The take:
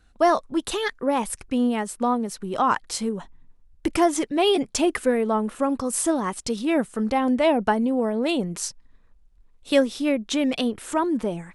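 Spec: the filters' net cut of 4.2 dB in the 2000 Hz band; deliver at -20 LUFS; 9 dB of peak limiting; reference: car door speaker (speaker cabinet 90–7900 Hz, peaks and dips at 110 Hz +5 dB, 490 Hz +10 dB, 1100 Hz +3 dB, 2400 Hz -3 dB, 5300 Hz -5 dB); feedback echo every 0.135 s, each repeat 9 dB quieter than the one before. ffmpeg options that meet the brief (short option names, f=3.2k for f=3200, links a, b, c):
-af "equalizer=f=2k:t=o:g=-4.5,alimiter=limit=-15.5dB:level=0:latency=1,highpass=90,equalizer=f=110:t=q:w=4:g=5,equalizer=f=490:t=q:w=4:g=10,equalizer=f=1.1k:t=q:w=4:g=3,equalizer=f=2.4k:t=q:w=4:g=-3,equalizer=f=5.3k:t=q:w=4:g=-5,lowpass=f=7.9k:w=0.5412,lowpass=f=7.9k:w=1.3066,aecho=1:1:135|270|405|540:0.355|0.124|0.0435|0.0152,volume=2.5dB"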